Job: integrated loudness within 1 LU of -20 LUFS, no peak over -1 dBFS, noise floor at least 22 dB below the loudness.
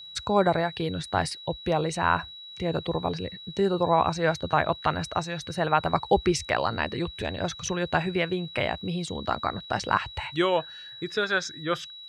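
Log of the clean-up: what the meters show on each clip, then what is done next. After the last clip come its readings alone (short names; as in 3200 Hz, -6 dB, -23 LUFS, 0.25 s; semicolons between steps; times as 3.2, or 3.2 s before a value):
ticks 45/s; steady tone 3900 Hz; tone level -41 dBFS; loudness -27.5 LUFS; peak -7.0 dBFS; loudness target -20.0 LUFS
-> de-click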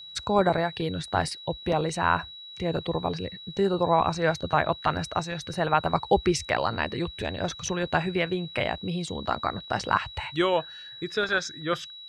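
ticks 0.083/s; steady tone 3900 Hz; tone level -41 dBFS
-> notch 3900 Hz, Q 30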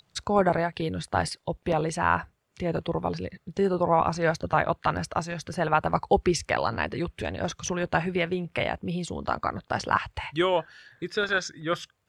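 steady tone none; loudness -27.5 LUFS; peak -7.0 dBFS; loudness target -20.0 LUFS
-> gain +7.5 dB; limiter -1 dBFS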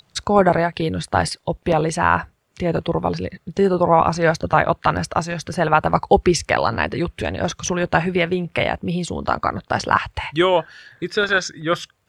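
loudness -20.0 LUFS; peak -1.0 dBFS; noise floor -63 dBFS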